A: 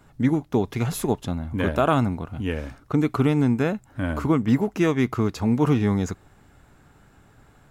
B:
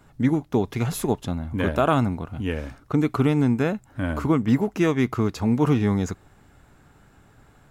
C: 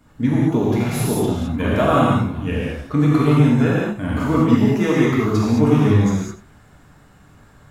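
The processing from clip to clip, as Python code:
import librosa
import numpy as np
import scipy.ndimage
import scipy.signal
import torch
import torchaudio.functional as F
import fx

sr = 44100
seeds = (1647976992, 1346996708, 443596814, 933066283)

y1 = x
y2 = fx.spec_quant(y1, sr, step_db=15)
y2 = y2 + 10.0 ** (-14.5 / 20.0) * np.pad(y2, (int(88 * sr / 1000.0), 0))[:len(y2)]
y2 = fx.rev_gated(y2, sr, seeds[0], gate_ms=240, shape='flat', drr_db=-6.0)
y2 = F.gain(torch.from_numpy(y2), -1.0).numpy()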